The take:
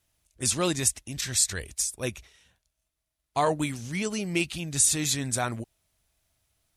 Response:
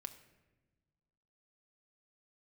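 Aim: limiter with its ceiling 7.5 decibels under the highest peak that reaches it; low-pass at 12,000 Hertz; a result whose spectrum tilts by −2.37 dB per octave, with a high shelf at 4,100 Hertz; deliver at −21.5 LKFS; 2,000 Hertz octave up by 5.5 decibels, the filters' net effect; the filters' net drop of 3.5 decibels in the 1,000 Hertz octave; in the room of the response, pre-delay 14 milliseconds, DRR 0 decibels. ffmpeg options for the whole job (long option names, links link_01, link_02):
-filter_complex "[0:a]lowpass=12000,equalizer=frequency=1000:width_type=o:gain=-7,equalizer=frequency=2000:width_type=o:gain=7.5,highshelf=frequency=4100:gain=4.5,alimiter=limit=-13dB:level=0:latency=1,asplit=2[link_01][link_02];[1:a]atrim=start_sample=2205,adelay=14[link_03];[link_02][link_03]afir=irnorm=-1:irlink=0,volume=4.5dB[link_04];[link_01][link_04]amix=inputs=2:normalize=0,volume=2dB"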